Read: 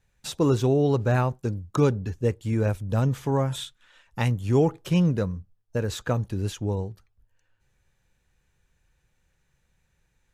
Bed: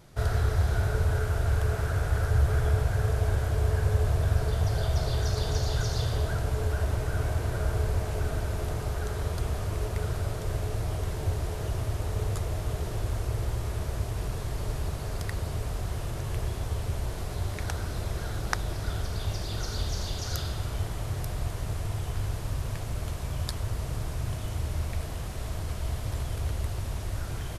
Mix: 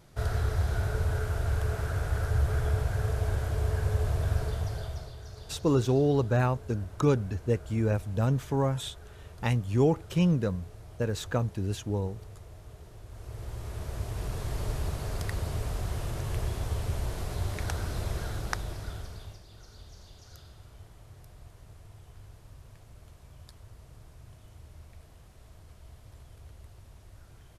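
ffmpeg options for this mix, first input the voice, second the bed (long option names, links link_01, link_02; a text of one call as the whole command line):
ffmpeg -i stem1.wav -i stem2.wav -filter_complex "[0:a]adelay=5250,volume=-3dB[link_01];[1:a]volume=13.5dB,afade=type=out:start_time=4.37:duration=0.77:silence=0.199526,afade=type=in:start_time=13.08:duration=1.47:silence=0.149624,afade=type=out:start_time=18.12:duration=1.3:silence=0.11885[link_02];[link_01][link_02]amix=inputs=2:normalize=0" out.wav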